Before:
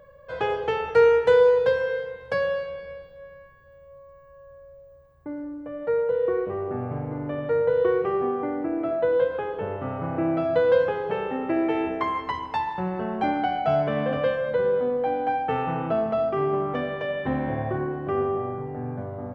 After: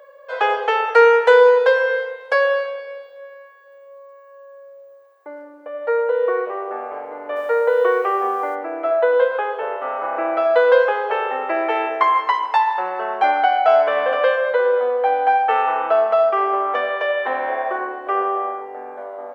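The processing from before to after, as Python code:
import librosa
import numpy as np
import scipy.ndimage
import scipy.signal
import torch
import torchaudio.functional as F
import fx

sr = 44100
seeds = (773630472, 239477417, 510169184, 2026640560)

y = fx.quant_dither(x, sr, seeds[0], bits=10, dither='none', at=(7.35, 8.54), fade=0.02)
y = scipy.signal.sosfilt(scipy.signal.butter(4, 490.0, 'highpass', fs=sr, output='sos'), y)
y = fx.dynamic_eq(y, sr, hz=1300.0, q=0.87, threshold_db=-39.0, ratio=4.0, max_db=5)
y = y * 10.0 ** (7.0 / 20.0)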